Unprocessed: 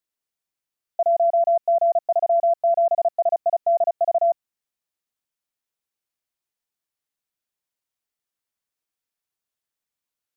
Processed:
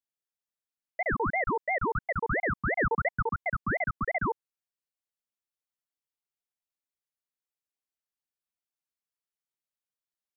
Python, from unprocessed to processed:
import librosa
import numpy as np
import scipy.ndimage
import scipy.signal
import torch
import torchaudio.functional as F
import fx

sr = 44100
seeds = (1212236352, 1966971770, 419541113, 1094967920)

y = fx.peak_eq(x, sr, hz=460.0, db=6.0, octaves=0.87, at=(2.79, 3.23))
y = fx.ring_lfo(y, sr, carrier_hz=830.0, swing_pct=75, hz=2.9)
y = y * librosa.db_to_amplitude(-7.0)